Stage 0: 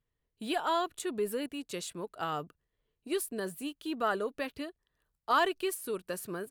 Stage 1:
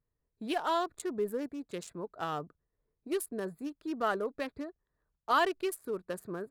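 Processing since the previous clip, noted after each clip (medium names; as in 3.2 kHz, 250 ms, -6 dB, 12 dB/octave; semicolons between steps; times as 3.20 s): local Wiener filter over 15 samples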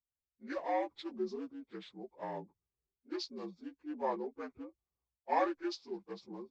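frequency axis rescaled in octaves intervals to 78%; three bands expanded up and down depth 40%; trim -4.5 dB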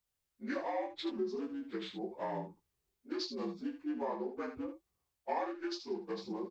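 compression 6:1, threshold -43 dBFS, peak gain reduction 16 dB; early reflections 24 ms -6 dB, 76 ms -8.5 dB; trim +7.5 dB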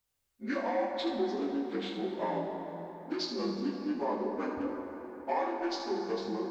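plate-style reverb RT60 4.3 s, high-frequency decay 0.5×, DRR 2 dB; trim +3.5 dB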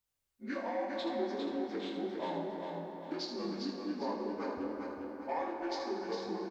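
feedback delay 403 ms, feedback 42%, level -5 dB; trim -5 dB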